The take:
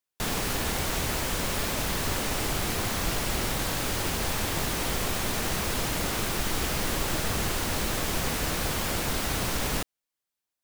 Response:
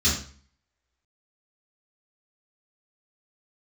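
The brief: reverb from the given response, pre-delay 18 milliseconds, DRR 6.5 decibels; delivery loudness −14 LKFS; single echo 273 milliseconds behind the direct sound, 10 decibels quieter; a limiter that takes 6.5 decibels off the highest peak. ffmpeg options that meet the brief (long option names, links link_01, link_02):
-filter_complex "[0:a]alimiter=limit=-20.5dB:level=0:latency=1,aecho=1:1:273:0.316,asplit=2[link_01][link_02];[1:a]atrim=start_sample=2205,adelay=18[link_03];[link_02][link_03]afir=irnorm=-1:irlink=0,volume=-19.5dB[link_04];[link_01][link_04]amix=inputs=2:normalize=0,volume=13.5dB"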